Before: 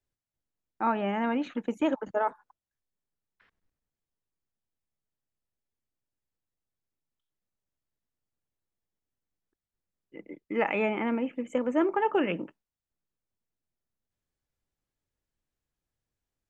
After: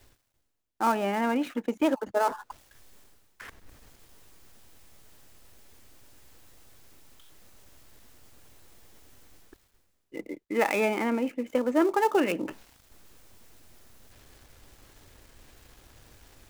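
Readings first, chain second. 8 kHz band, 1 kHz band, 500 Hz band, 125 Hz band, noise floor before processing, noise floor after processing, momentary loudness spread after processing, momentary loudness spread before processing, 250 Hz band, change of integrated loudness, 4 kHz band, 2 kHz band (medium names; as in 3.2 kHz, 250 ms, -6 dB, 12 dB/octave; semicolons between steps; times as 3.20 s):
no reading, +2.5 dB, +2.5 dB, -0.5 dB, under -85 dBFS, -72 dBFS, 15 LU, 8 LU, +1.5 dB, +2.0 dB, +4.5 dB, +2.5 dB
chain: dead-time distortion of 0.064 ms; peaking EQ 170 Hz -8 dB 0.45 oct; reverse; upward compressor, threshold -30 dBFS; reverse; trim +2.5 dB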